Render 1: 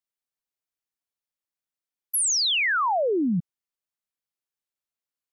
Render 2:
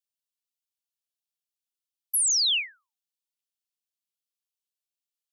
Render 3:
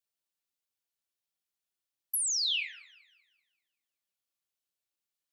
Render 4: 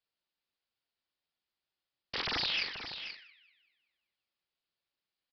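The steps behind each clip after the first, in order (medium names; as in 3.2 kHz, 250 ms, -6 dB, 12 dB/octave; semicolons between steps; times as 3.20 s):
steep high-pass 2.6 kHz 48 dB/octave
compression 2.5:1, threshold -33 dBFS, peak gain reduction 7.5 dB; feedback echo behind a low-pass 192 ms, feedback 41%, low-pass 1.9 kHz, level -13 dB; on a send at -2 dB: reverberation RT60 0.40 s, pre-delay 3 ms
self-modulated delay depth 0.47 ms; resampled via 11.025 kHz; delay 481 ms -10 dB; trim +3.5 dB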